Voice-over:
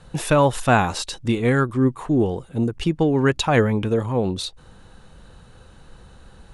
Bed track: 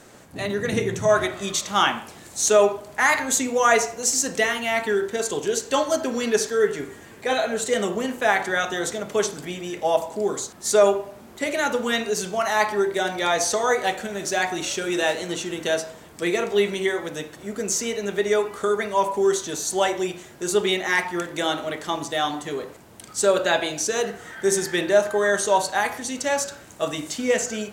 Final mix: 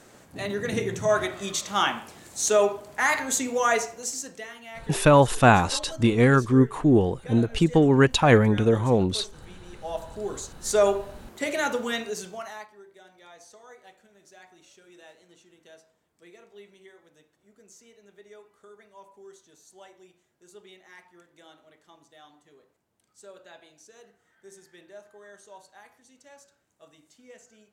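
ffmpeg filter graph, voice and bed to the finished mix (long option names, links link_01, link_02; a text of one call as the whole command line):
ffmpeg -i stem1.wav -i stem2.wav -filter_complex "[0:a]adelay=4750,volume=0.5dB[link_01];[1:a]volume=11dB,afade=type=out:start_time=3.59:duration=0.82:silence=0.199526,afade=type=in:start_time=9.65:duration=1.34:silence=0.177828,afade=type=out:start_time=11.64:duration=1.04:silence=0.0530884[link_02];[link_01][link_02]amix=inputs=2:normalize=0" out.wav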